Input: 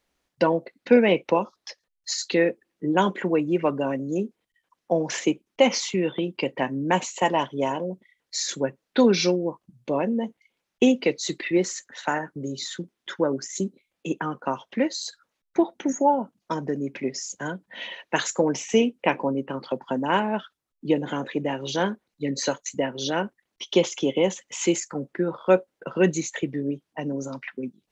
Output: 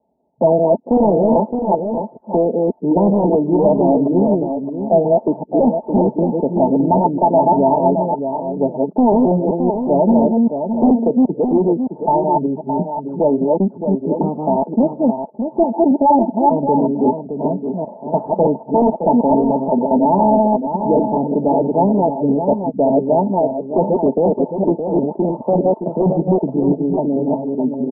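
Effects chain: chunks repeated in reverse 194 ms, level -2 dB; high-pass 64 Hz 24 dB/octave; comb 4.7 ms, depth 42%; in parallel at -9.5 dB: sine folder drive 14 dB, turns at -3.5 dBFS; on the sum: rippled Chebyshev low-pass 920 Hz, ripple 6 dB; bass shelf 310 Hz -8.5 dB; on a send: delay 617 ms -7.5 dB; on the sum: loudness maximiser +9 dB; trim -2.5 dB

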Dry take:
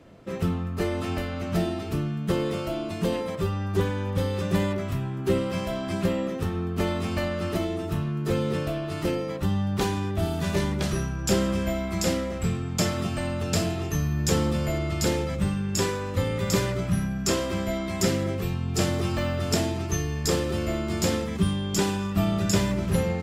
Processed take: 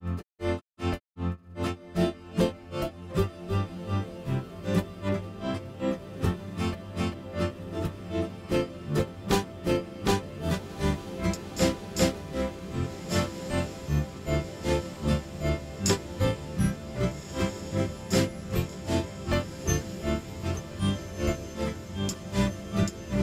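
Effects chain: granulator 233 ms, grains 2.6 per s, spray 719 ms, pitch spread up and down by 0 st; echo that smears into a reverb 1630 ms, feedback 71%, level -12 dB; trim +2.5 dB

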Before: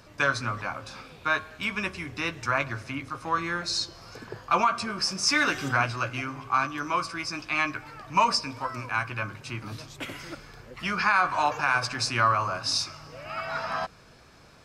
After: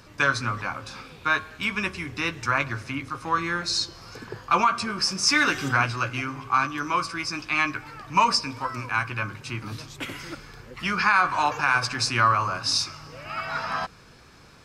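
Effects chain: peaking EQ 640 Hz -6 dB 0.45 oct; trim +3 dB

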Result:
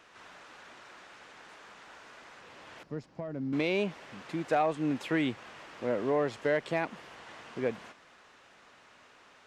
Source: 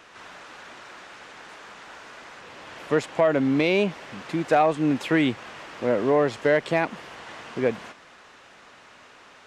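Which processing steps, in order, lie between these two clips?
2.83–3.53 s: FFT filter 190 Hz 0 dB, 460 Hz -11 dB, 3.4 kHz -20 dB, 5 kHz -9 dB, 7.7 kHz -20 dB; trim -8 dB

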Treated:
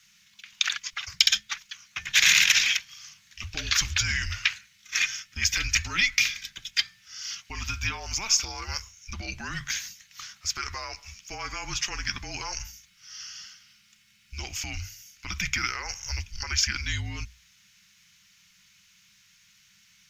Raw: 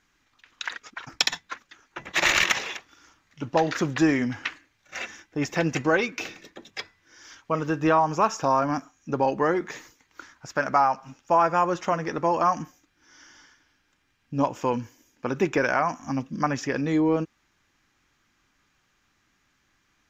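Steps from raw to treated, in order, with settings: hum notches 50/100/150/200/250/300/350 Hz; peak limiter -18 dBFS, peak gain reduction 11 dB; FFT filter 120 Hz 0 dB, 790 Hz -22 dB, 2.6 kHz +10 dB, 6.2 kHz +13 dB; frequency shift -210 Hz; trim +2 dB

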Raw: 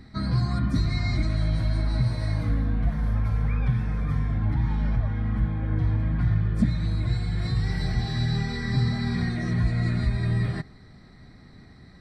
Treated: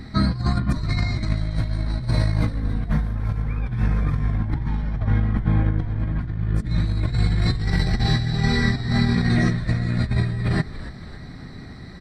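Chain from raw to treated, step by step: compressor with a negative ratio -27 dBFS, ratio -0.5; frequency-shifting echo 280 ms, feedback 50%, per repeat -96 Hz, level -14 dB; trim +6.5 dB

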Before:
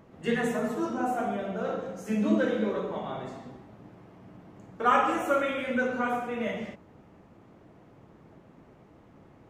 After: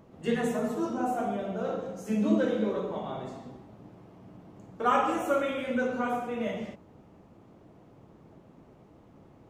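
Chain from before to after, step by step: peaking EQ 1.8 kHz -5.5 dB 1.1 oct

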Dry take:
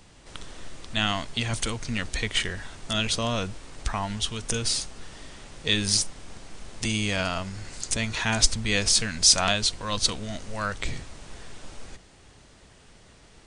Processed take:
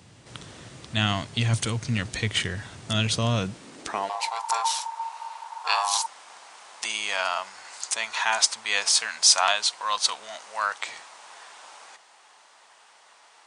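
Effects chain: 4.09–6.06 s: ring modulator 910 Hz; high-pass sweep 110 Hz -> 900 Hz, 3.36–4.40 s

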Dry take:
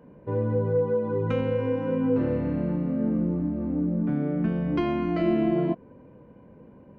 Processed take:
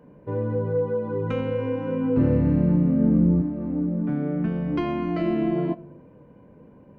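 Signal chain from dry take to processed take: 2.17–3.42 s: bass shelf 240 Hz +12 dB; simulated room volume 1900 m³, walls furnished, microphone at 0.4 m

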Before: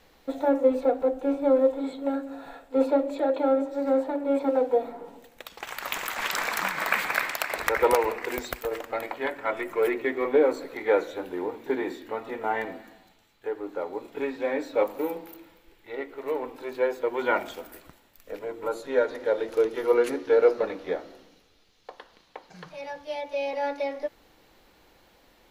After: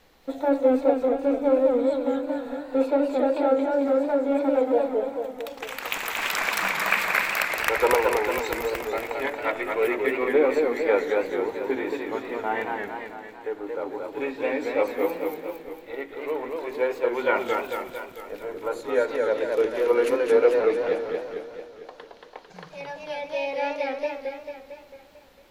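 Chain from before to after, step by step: dynamic bell 2.5 kHz, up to +5 dB, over -50 dBFS, Q 3.4; modulated delay 224 ms, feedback 57%, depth 144 cents, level -3.5 dB

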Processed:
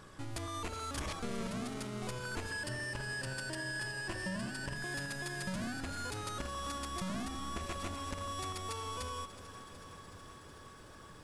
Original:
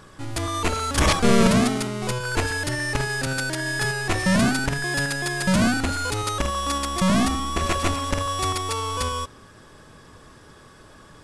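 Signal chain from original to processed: 2.51–4.76 s: rippled EQ curve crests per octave 1.3, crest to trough 9 dB; compression 6:1, threshold -31 dBFS, peak gain reduction 16.5 dB; bit-crushed delay 371 ms, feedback 80%, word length 10-bit, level -14 dB; trim -7 dB

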